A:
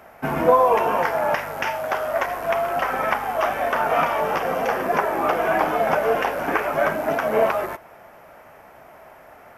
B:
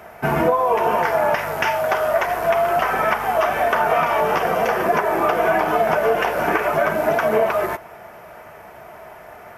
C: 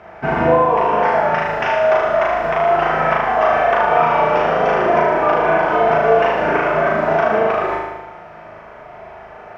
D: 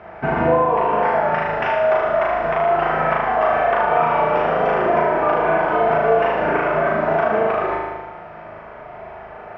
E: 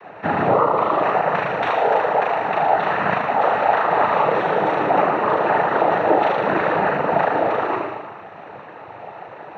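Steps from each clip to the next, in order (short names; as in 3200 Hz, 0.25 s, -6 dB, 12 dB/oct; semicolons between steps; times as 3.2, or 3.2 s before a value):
compressor 10:1, threshold -20 dBFS, peak gain reduction 10 dB; notch comb 270 Hz; gain +7 dB
air absorption 180 m; on a send: flutter echo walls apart 6.5 m, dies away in 1.1 s
in parallel at -1 dB: compressor, threshold -22 dBFS, peak gain reduction 13 dB; on the sum: air absorption 190 m; gain -4 dB
noise vocoder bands 12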